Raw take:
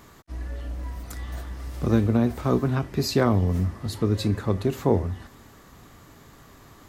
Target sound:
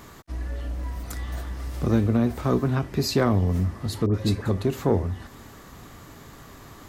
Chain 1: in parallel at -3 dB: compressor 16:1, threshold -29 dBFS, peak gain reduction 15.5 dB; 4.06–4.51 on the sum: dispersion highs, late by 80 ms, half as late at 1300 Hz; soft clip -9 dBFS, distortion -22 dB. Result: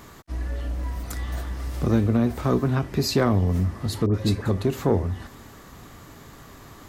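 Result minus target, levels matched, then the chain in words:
compressor: peak gain reduction -8 dB
in parallel at -3 dB: compressor 16:1, threshold -37.5 dBFS, peak gain reduction 23 dB; 4.06–4.51 on the sum: dispersion highs, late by 80 ms, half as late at 1300 Hz; soft clip -9 dBFS, distortion -23 dB

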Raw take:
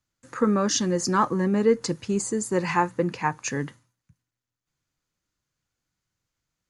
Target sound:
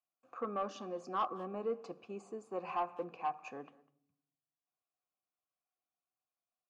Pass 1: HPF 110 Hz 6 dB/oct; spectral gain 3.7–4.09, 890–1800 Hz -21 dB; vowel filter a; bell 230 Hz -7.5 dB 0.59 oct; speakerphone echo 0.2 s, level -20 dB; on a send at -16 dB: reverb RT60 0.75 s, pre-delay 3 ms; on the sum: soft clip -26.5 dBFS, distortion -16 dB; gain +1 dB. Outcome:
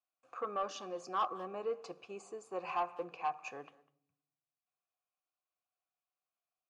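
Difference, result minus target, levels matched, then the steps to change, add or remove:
250 Hz band -5.0 dB; 4000 Hz band +4.0 dB
add after HPF: high shelf 2000 Hz -7.5 dB; change: bell 230 Hz +3.5 dB 0.59 oct

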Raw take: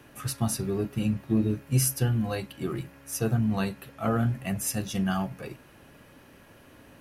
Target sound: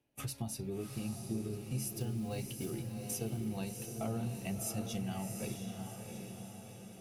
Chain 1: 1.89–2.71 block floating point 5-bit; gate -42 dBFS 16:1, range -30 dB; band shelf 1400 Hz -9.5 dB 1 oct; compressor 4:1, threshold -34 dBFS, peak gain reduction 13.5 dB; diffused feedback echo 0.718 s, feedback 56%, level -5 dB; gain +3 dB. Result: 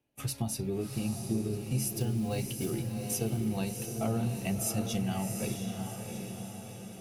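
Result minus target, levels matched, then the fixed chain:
compressor: peak gain reduction -6.5 dB
1.89–2.71 block floating point 5-bit; gate -42 dBFS 16:1, range -30 dB; band shelf 1400 Hz -9.5 dB 1 oct; compressor 4:1, threshold -42.5 dBFS, peak gain reduction 20 dB; diffused feedback echo 0.718 s, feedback 56%, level -5 dB; gain +3 dB

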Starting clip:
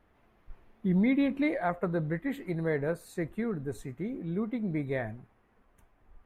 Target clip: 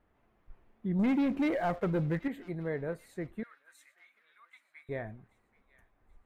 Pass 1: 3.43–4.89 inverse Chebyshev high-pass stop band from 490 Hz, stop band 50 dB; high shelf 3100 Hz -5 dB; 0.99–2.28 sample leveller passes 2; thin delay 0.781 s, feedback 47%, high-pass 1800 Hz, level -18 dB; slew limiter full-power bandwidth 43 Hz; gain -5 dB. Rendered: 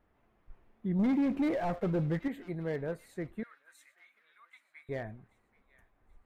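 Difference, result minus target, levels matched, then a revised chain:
slew limiter: distortion +16 dB
3.43–4.89 inverse Chebyshev high-pass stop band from 490 Hz, stop band 50 dB; high shelf 3100 Hz -5 dB; 0.99–2.28 sample leveller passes 2; thin delay 0.781 s, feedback 47%, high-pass 1800 Hz, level -18 dB; slew limiter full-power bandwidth 123 Hz; gain -5 dB

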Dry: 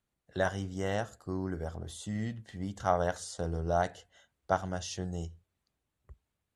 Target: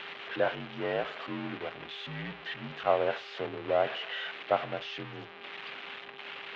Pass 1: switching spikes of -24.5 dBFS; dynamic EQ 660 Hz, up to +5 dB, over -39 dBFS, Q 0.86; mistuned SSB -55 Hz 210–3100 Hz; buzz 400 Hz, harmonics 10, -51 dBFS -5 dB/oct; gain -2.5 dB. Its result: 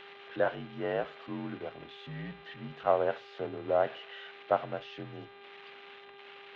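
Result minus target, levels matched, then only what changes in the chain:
switching spikes: distortion -10 dB
change: switching spikes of -14.5 dBFS

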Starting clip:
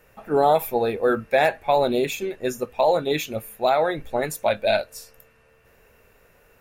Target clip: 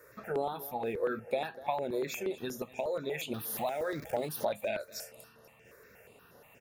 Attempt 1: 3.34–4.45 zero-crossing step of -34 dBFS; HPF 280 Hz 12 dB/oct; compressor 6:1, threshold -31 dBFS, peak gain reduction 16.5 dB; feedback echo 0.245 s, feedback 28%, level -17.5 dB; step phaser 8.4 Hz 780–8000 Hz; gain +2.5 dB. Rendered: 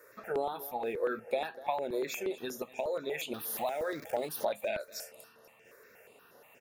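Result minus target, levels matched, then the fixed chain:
125 Hz band -8.0 dB
3.34–4.45 zero-crossing step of -34 dBFS; HPF 130 Hz 12 dB/oct; compressor 6:1, threshold -31 dBFS, peak gain reduction 16.5 dB; feedback echo 0.245 s, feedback 28%, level -17.5 dB; step phaser 8.4 Hz 780–8000 Hz; gain +2.5 dB

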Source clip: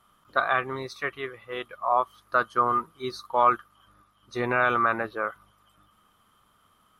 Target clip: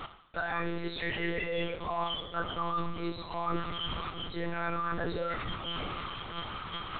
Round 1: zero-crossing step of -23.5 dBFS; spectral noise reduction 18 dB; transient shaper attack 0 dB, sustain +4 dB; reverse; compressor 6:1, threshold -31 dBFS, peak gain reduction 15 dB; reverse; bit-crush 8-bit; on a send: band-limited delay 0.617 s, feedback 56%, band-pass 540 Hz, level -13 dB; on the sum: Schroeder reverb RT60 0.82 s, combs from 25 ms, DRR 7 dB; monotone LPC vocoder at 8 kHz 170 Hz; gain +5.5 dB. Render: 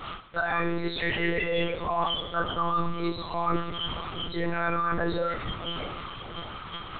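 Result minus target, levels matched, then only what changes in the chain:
compressor: peak gain reduction -6 dB
change: compressor 6:1, threshold -38 dBFS, peak gain reduction 21 dB

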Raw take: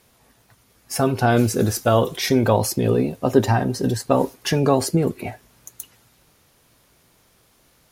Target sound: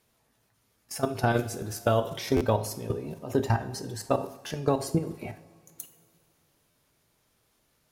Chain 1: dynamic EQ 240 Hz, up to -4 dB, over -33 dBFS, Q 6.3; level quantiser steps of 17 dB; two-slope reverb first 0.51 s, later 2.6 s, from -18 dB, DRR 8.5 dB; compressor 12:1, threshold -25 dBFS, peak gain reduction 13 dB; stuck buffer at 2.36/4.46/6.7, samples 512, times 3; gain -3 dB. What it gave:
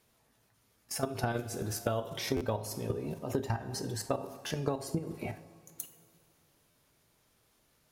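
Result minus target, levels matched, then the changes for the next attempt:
compressor: peak gain reduction +9 dB
change: compressor 12:1, threshold -15 dBFS, peak gain reduction 4 dB

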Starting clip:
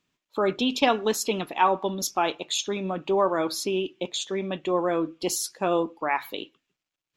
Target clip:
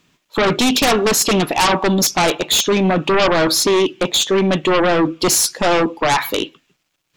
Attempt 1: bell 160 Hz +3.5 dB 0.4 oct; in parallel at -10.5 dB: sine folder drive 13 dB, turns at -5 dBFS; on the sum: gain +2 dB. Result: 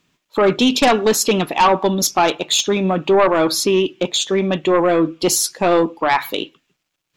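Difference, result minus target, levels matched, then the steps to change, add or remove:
sine folder: distortion -11 dB
change: sine folder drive 20 dB, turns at -5 dBFS

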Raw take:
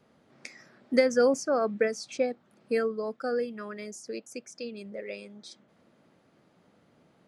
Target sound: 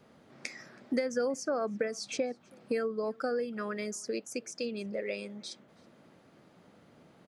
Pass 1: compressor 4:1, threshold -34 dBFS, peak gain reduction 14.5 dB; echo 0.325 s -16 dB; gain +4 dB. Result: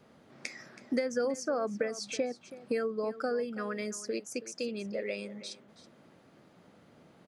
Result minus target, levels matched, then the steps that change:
echo-to-direct +11.5 dB
change: echo 0.325 s -27.5 dB

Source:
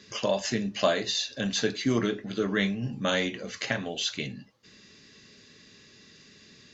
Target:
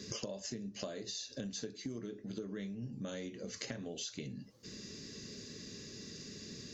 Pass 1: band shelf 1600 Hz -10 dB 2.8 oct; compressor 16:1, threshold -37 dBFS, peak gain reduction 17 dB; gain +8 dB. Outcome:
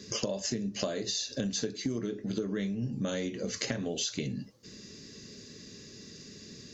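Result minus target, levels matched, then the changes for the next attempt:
compressor: peak gain reduction -9.5 dB
change: compressor 16:1, threshold -47 dBFS, peak gain reduction 26.5 dB

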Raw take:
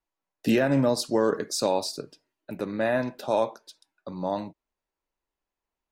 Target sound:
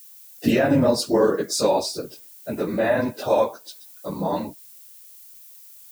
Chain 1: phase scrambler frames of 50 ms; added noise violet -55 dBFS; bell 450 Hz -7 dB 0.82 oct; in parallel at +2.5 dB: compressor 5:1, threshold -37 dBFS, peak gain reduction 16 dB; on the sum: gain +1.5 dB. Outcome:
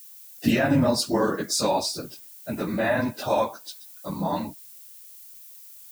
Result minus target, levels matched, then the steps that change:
500 Hz band -2.5 dB
change: bell 450 Hz +2.5 dB 0.82 oct

